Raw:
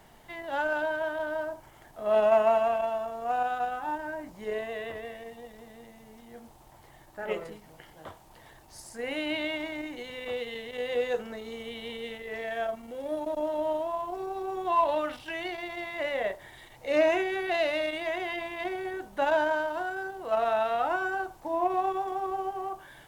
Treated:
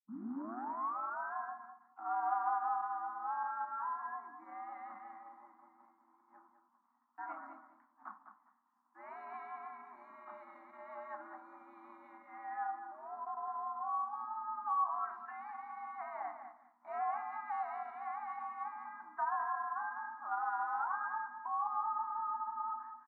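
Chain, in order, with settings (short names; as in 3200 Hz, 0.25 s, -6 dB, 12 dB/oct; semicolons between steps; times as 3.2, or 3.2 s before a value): tape start at the beginning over 1.33 s; elliptic band-pass 110–1200 Hz, stop band 40 dB; expander -45 dBFS; Chebyshev band-stop 150–910 Hz, order 2; low shelf 340 Hz -12 dB; compressor 2:1, threshold -39 dBFS, peak gain reduction 9.5 dB; frequency shift +110 Hz; feedback echo 0.204 s, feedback 17%, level -9.5 dB; on a send at -12 dB: reverb RT60 0.55 s, pre-delay 6 ms; on the sum: gain +2 dB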